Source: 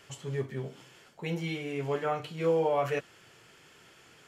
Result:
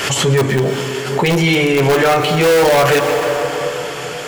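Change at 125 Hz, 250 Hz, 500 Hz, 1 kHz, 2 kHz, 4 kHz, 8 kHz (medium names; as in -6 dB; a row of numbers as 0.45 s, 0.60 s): +19.0 dB, +19.0 dB, +18.0 dB, +18.5 dB, +23.5 dB, +26.0 dB, no reading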